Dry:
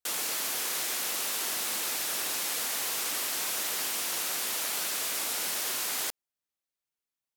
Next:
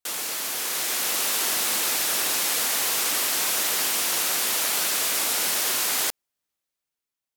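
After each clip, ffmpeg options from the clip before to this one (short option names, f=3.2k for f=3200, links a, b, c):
-af "dynaudnorm=f=190:g=9:m=5.5dB,volume=2dB"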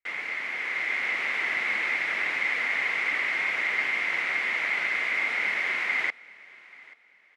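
-af "lowpass=f=2.1k:t=q:w=12,aecho=1:1:833|1666:0.075|0.024,volume=-7dB"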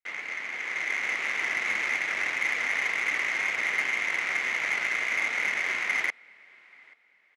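-af "aeval=exprs='0.188*(cos(1*acos(clip(val(0)/0.188,-1,1)))-cos(1*PI/2))+0.0106*(cos(7*acos(clip(val(0)/0.188,-1,1)))-cos(7*PI/2))':c=same,aresample=32000,aresample=44100"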